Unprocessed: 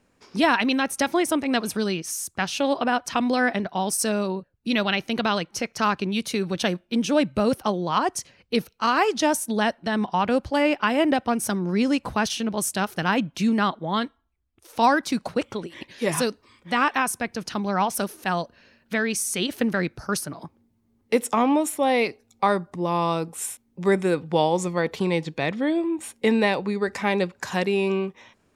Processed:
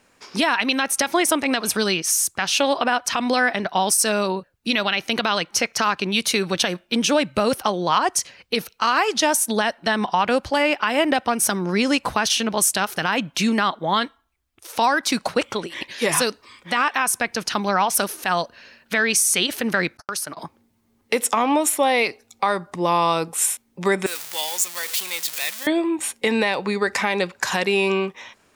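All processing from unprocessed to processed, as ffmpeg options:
-filter_complex "[0:a]asettb=1/sr,asplit=3[s0][s1][s2];[s0]atrim=end=19.974[s3];[s1]atrim=start=19.97:end=20.37,asetpts=PTS-STARTPTS,afade=t=in:d=0.004:c=qsin,afade=t=out:st=0.396:d=0.004:c=qsin,agate=range=0.00178:threshold=0.0158:ratio=16:release=100:detection=peak,lowshelf=f=180:g=-11,acompressor=threshold=0.0224:ratio=5:attack=3.2:release=140:knee=1:detection=peak[s4];[s2]atrim=start=20.366[s5];[s3][s4]acrossfade=d=0.004:c1=hsin:c2=qsin[s6];[s6][s5]acrossfade=d=0.004:c1=qsin:c2=hsin,asettb=1/sr,asplit=3[s7][s8][s9];[s7]atrim=end=24.064[s10];[s8]atrim=start=24.06:end=25.67,asetpts=PTS-STARTPTS,afade=t=in:d=0.004:c=qsin,afade=t=out:st=1.606:d=0.004:c=qsin,aeval=exprs='val(0)+0.5*0.0473*sgn(val(0))':c=same,aderivative[s11];[s9]atrim=start=25.666[s12];[s10][s11]acrossfade=d=0.004:c1=hsin:c2=qsin[s13];[s13][s12]acrossfade=d=0.004:c1=qsin:c2=hsin,lowshelf=f=480:g=-12,acompressor=threshold=0.0562:ratio=6,alimiter=level_in=7.5:limit=0.891:release=50:level=0:latency=1,volume=0.473"

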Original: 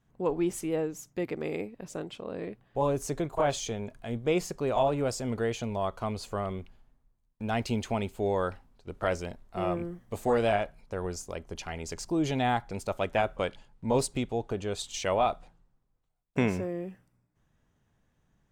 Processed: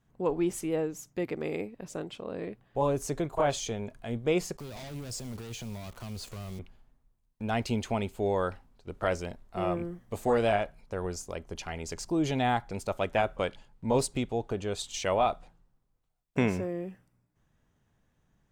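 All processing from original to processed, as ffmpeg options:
-filter_complex "[0:a]asettb=1/sr,asplit=3[s0][s1][s2];[s0]atrim=end=4.574[s3];[s1]atrim=start=4.57:end=6.59,asetpts=PTS-STARTPTS,afade=t=in:d=0.004:c=qsin,afade=t=out:st=2.016:d=0.004:c=qsin,acrusher=bits=9:dc=4:mix=0:aa=0.000001,volume=37.6,asoftclip=hard,volume=0.0266,acrossover=split=210|3000[s4][s5][s6];[s5]acompressor=threshold=0.00562:ratio=5:attack=3.2:release=140:knee=2.83:detection=peak[s7];[s4][s7][s6]amix=inputs=3:normalize=0[s8];[s2]atrim=start=6.586[s9];[s3][s8]acrossfade=d=0.004:c1=hsin:c2=qsin[s10];[s10][s9]acrossfade=d=0.004:c1=qsin:c2=hsin"

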